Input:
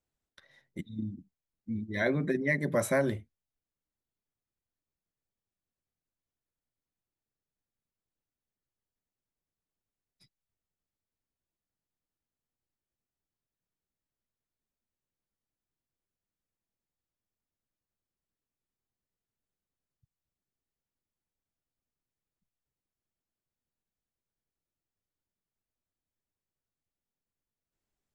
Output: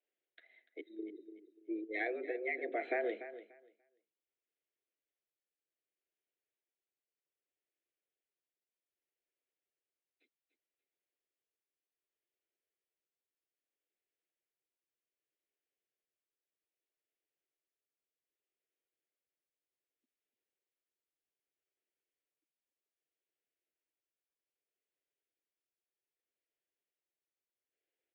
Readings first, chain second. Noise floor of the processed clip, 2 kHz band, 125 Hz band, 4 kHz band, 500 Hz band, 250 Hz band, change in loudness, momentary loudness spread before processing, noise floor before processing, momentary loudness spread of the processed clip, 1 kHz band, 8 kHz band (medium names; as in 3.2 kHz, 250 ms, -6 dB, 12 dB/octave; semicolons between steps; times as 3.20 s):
under -85 dBFS, -6.5 dB, under -40 dB, -11.5 dB, -7.0 dB, -11.0 dB, -8.0 dB, 18 LU, under -85 dBFS, 18 LU, -3.5 dB, under -25 dB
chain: band-stop 720 Hz, Q 12; compression, threshold -29 dBFS, peak gain reduction 7 dB; static phaser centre 2.3 kHz, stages 4; mistuned SSB +110 Hz 240–3500 Hz; on a send: feedback delay 292 ms, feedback 23%, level -13 dB; on the sum: tremolo 0.64 Hz, depth 44%; trim +2 dB